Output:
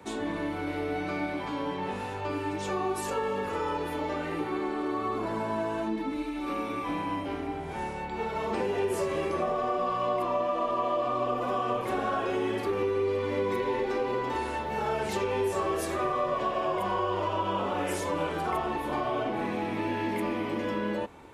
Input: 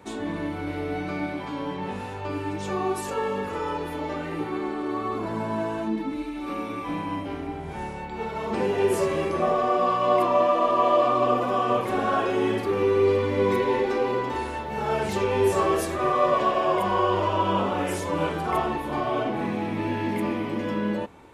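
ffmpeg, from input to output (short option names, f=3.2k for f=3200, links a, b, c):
-filter_complex "[0:a]acrossover=split=88|250[a][b][c];[a]acompressor=threshold=-47dB:ratio=4[d];[b]acompressor=threshold=-45dB:ratio=4[e];[c]acompressor=threshold=-27dB:ratio=4[f];[d][e][f]amix=inputs=3:normalize=0"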